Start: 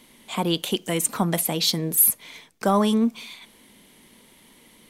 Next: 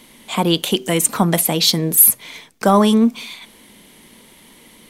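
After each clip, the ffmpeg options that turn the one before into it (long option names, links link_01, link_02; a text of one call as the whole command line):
ffmpeg -i in.wav -af "bandreject=frequency=127.6:width_type=h:width=4,bandreject=frequency=255.2:width_type=h:width=4,bandreject=frequency=382.8:width_type=h:width=4,volume=7dB" out.wav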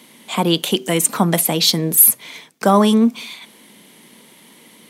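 ffmpeg -i in.wav -af "highpass=frequency=130:width=0.5412,highpass=frequency=130:width=1.3066" out.wav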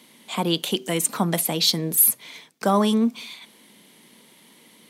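ffmpeg -i in.wav -af "equalizer=frequency=4300:width_type=o:width=0.77:gain=2.5,volume=-6.5dB" out.wav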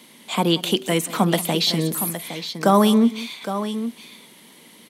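ffmpeg -i in.wav -filter_complex "[0:a]acrossover=split=3600[link_01][link_02];[link_02]acompressor=threshold=-29dB:ratio=4:attack=1:release=60[link_03];[link_01][link_03]amix=inputs=2:normalize=0,asplit=2[link_04][link_05];[link_05]aecho=0:1:182|814:0.133|0.299[link_06];[link_04][link_06]amix=inputs=2:normalize=0,volume=4dB" out.wav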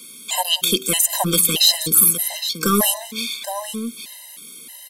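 ffmpeg -i in.wav -af "aeval=exprs='0.708*(cos(1*acos(clip(val(0)/0.708,-1,1)))-cos(1*PI/2))+0.0398*(cos(4*acos(clip(val(0)/0.708,-1,1)))-cos(4*PI/2))':channel_layout=same,crystalizer=i=5.5:c=0,afftfilt=real='re*gt(sin(2*PI*1.6*pts/sr)*(1-2*mod(floor(b*sr/1024/530),2)),0)':imag='im*gt(sin(2*PI*1.6*pts/sr)*(1-2*mod(floor(b*sr/1024/530),2)),0)':win_size=1024:overlap=0.75,volume=-1dB" out.wav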